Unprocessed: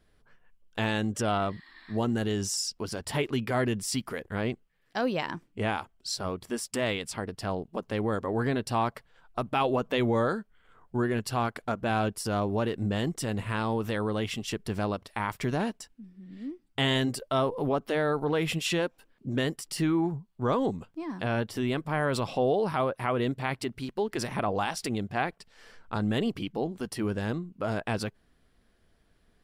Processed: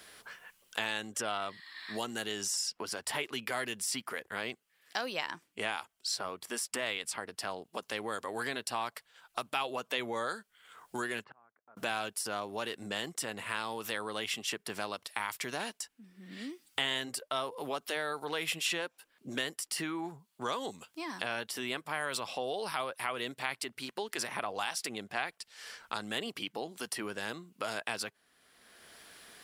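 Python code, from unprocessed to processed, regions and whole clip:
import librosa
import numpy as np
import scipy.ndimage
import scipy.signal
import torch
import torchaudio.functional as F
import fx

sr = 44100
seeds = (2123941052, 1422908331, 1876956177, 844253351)

y = fx.chain(x, sr, fx.lowpass(hz=1500.0, slope=24),
    fx.gate_flip(shuts_db=-33.0, range_db=-36), at=(11.24, 11.77))
y = fx.highpass(y, sr, hz=1500.0, slope=6)
y = fx.peak_eq(y, sr, hz=11000.0, db=4.5, octaves=1.4)
y = fx.band_squash(y, sr, depth_pct=70)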